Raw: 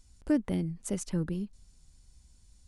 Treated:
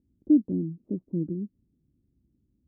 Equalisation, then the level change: high-pass 120 Hz 12 dB/octave; four-pole ladder low-pass 360 Hz, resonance 55%; +9.0 dB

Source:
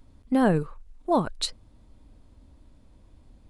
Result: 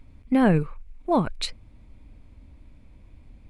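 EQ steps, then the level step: tone controls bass +5 dB, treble -4 dB; peaking EQ 2.3 kHz +12.5 dB 0.43 oct; 0.0 dB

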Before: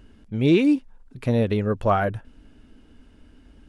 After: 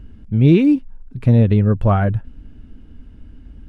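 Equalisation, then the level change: tone controls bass +13 dB, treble -6 dB; 0.0 dB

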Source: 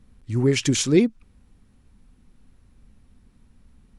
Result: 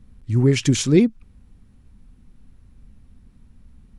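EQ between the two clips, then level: tone controls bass +6 dB, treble -1 dB; 0.0 dB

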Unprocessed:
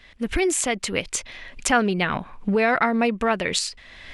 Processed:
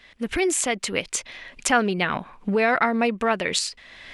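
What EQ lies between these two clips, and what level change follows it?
bass shelf 100 Hz -10.5 dB; 0.0 dB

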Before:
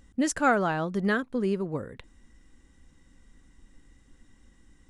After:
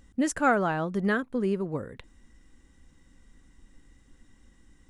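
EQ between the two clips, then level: dynamic bell 4.7 kHz, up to -5 dB, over -51 dBFS, Q 1.1; 0.0 dB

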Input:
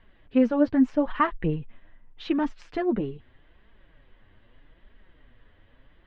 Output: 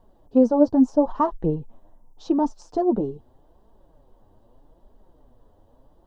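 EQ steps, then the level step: FFT filter 120 Hz 0 dB, 880 Hz +8 dB, 2.1 kHz -25 dB, 3.3 kHz -12 dB, 5.8 kHz +11 dB; 0.0 dB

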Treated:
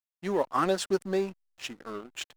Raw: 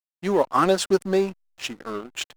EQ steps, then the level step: dynamic bell 1.8 kHz, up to +3 dB, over -43 dBFS, Q 5.4; -7.0 dB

